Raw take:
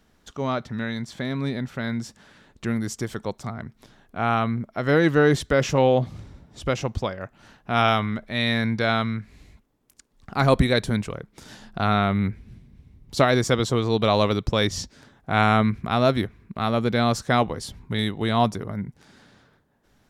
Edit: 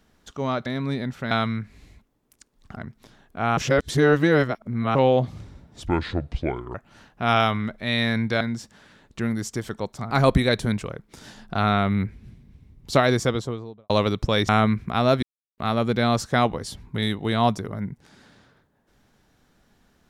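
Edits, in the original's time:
0.66–1.21 cut
1.86–3.56 swap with 8.89–10.35
4.36–5.74 reverse
6.66–7.23 speed 65%
13.32–14.14 studio fade out
14.73–15.45 cut
16.19–16.54 mute

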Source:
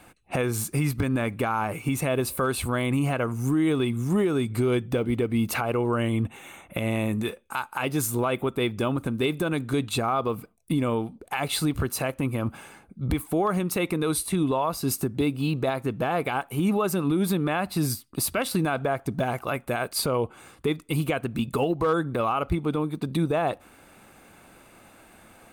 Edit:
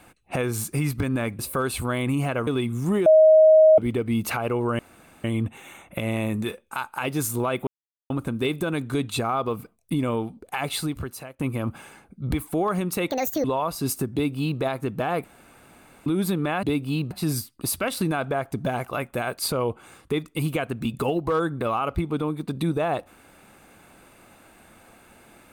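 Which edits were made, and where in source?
1.39–2.23 cut
3.31–3.71 cut
4.3–5.02 bleep 629 Hz -10 dBFS
6.03 insert room tone 0.45 s
8.46–8.89 mute
11.42–12.18 fade out, to -20 dB
13.89–14.46 speed 167%
15.15–15.63 copy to 17.65
16.26–17.08 room tone

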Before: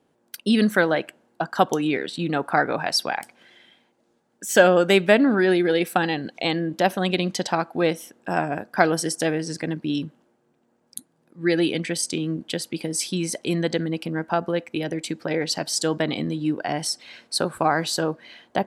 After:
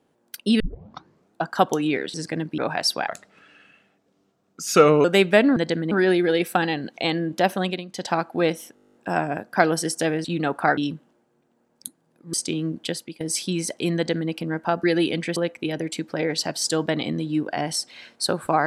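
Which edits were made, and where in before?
0.6 tape start 0.81 s
2.14–2.67 swap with 9.45–9.89
3.17–4.8 speed 83%
7–7.54 dip -15 dB, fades 0.26 s
8.15 stutter 0.02 s, 11 plays
11.45–11.98 move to 14.48
12.55–12.85 fade out, to -18.5 dB
13.6–13.95 copy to 5.32

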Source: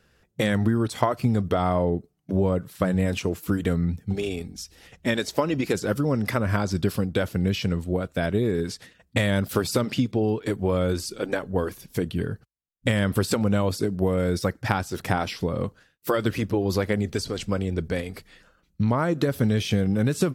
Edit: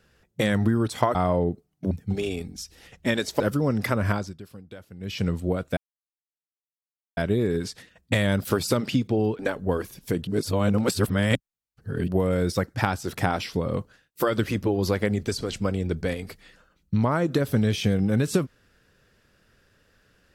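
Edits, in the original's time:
1.15–1.61 cut
2.37–3.91 cut
5.4–5.84 cut
6.54–7.68 dip -18.5 dB, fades 0.24 s
8.21 insert silence 1.40 s
10.43–11.26 cut
12.14–13.95 reverse

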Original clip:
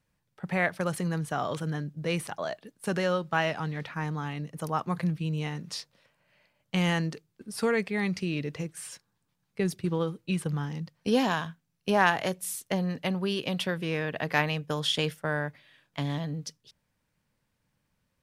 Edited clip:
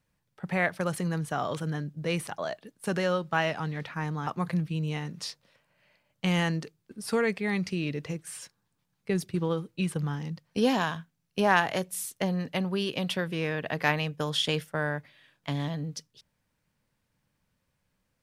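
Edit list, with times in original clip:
4.27–4.77 cut

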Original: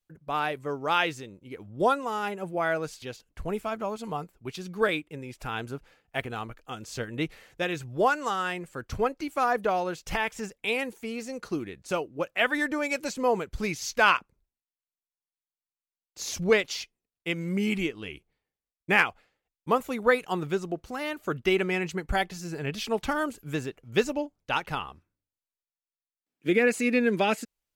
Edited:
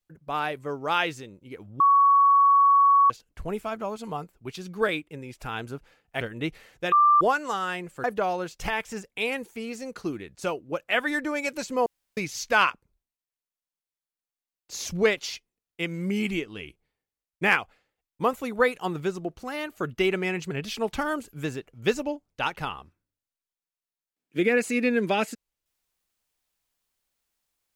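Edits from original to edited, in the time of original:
1.8–3.1 bleep 1120 Hz -14.5 dBFS
6.21–6.98 cut
7.69–7.98 bleep 1180 Hz -14.5 dBFS
8.81–9.51 cut
13.33–13.64 room tone
21.98–22.61 cut

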